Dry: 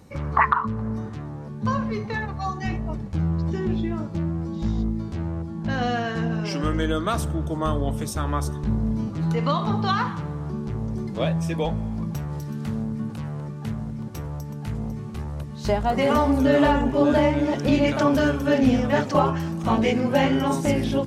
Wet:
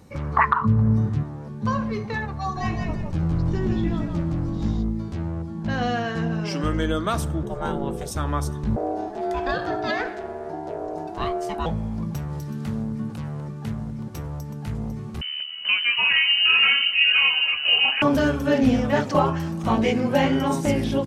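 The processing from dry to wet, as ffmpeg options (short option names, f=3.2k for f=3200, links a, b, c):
-filter_complex "[0:a]asettb=1/sr,asplit=3[a][b][c];[a]atrim=end=0.614[d];[b]atrim=start=0.61:end=1.23,asetpts=PTS-STARTPTS,afade=t=in:d=0.004:c=qsin,afade=t=out:st=0.616:d=0.004:c=qsin,equalizer=f=120:w=0.71:g=12.5[e];[c]atrim=start=1.226[f];[d][e]acrossfade=d=0.004:c1=hsin:c2=qsin[g];[g][f]acrossfade=d=0.004:c1=qsin:c2=hsin,asplit=3[h][i][j];[h]afade=t=out:st=2.55:d=0.02[k];[i]asplit=5[l][m][n][o][p];[m]adelay=164,afreqshift=-46,volume=-3.5dB[q];[n]adelay=328,afreqshift=-92,volume=-13.1dB[r];[o]adelay=492,afreqshift=-138,volume=-22.8dB[s];[p]adelay=656,afreqshift=-184,volume=-32.4dB[t];[l][q][r][s][t]amix=inputs=5:normalize=0,afade=t=in:st=2.55:d=0.02,afade=t=out:st=4.76:d=0.02[u];[j]afade=t=in:st=4.76:d=0.02[v];[k][u][v]amix=inputs=3:normalize=0,asettb=1/sr,asplit=3[w][x][y];[w]atrim=end=7.434[z];[x]atrim=start=7.43:end=8.11,asetpts=PTS-STARTPTS,afade=t=in:d=0.004:c=qsin,afade=t=out:st=0.676:d=0.004:c=qsin,aeval=exprs='val(0)*sin(2*PI*280*n/s)':c=same[aa];[y]atrim=start=8.106[ab];[z][aa]acrossfade=d=0.004:c1=hsin:c2=qsin[ac];[ac][ab]acrossfade=d=0.004:c1=qsin:c2=hsin,asettb=1/sr,asplit=3[ad][ae][af];[ad]atrim=end=8.764[ag];[ae]atrim=start=8.76:end=11.66,asetpts=PTS-STARTPTS,afade=t=in:d=0.004:c=qsin,afade=t=out:st=2.896:d=0.004:c=qsin,aeval=exprs='val(0)*sin(2*PI*530*n/s)':c=same[ah];[af]atrim=start=11.656[ai];[ag][ah]acrossfade=d=0.004:c1=hsin:c2=qsin[aj];[aj][ai]acrossfade=d=0.004:c1=qsin:c2=hsin,asettb=1/sr,asplit=3[ak][al][am];[ak]atrim=end=15.214[an];[al]atrim=start=15.21:end=18.02,asetpts=PTS-STARTPTS,afade=t=in:d=0.004:c=qsin,afade=t=out:st=2.806:d=0.004:c=qsin,lowpass=f=2.6k:t=q:w=0.5098,lowpass=f=2.6k:t=q:w=0.6013,lowpass=f=2.6k:t=q:w=0.9,lowpass=f=2.6k:t=q:w=2.563,afreqshift=-3100[ao];[am]atrim=start=18.016[ap];[an][ao]acrossfade=d=0.004:c1=hsin:c2=qsin[aq];[aq][ap]acrossfade=d=0.004:c1=qsin:c2=hsin"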